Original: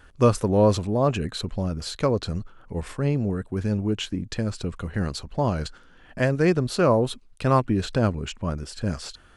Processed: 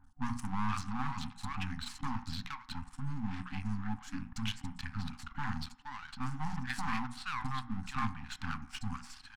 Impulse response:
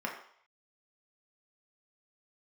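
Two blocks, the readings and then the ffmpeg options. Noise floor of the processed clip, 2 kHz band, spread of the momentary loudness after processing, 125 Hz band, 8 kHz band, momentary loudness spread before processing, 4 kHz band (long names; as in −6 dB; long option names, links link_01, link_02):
−56 dBFS, −7.0 dB, 7 LU, −15.5 dB, −12.0 dB, 11 LU, −10.0 dB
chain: -filter_complex "[0:a]highshelf=frequency=9300:gain=8,bandreject=frequency=60:width_type=h:width=6,bandreject=frequency=120:width_type=h:width=6,bandreject=frequency=180:width_type=h:width=6,bandreject=frequency=240:width_type=h:width=6,bandreject=frequency=300:width_type=h:width=6,bandreject=frequency=360:width_type=h:width=6,bandreject=frequency=420:width_type=h:width=6,bandreject=frequency=480:width_type=h:width=6,bandreject=frequency=540:width_type=h:width=6,bandreject=frequency=600:width_type=h:width=6,acrossover=split=970|5200[link_01][link_02][link_03];[link_03]adelay=40[link_04];[link_02]adelay=470[link_05];[link_01][link_05][link_04]amix=inputs=3:normalize=0,alimiter=limit=-13.5dB:level=0:latency=1:release=389,aeval=exprs='max(val(0),0)':channel_layout=same,adynamicsmooth=sensitivity=6:basefreq=5600,asplit=2[link_06][link_07];[1:a]atrim=start_sample=2205[link_08];[link_07][link_08]afir=irnorm=-1:irlink=0,volume=-13.5dB[link_09];[link_06][link_09]amix=inputs=2:normalize=0,afftfilt=real='re*(1-between(b*sr/4096,280,750))':imag='im*(1-between(b*sr/4096,280,750))':win_size=4096:overlap=0.75,volume=-4dB"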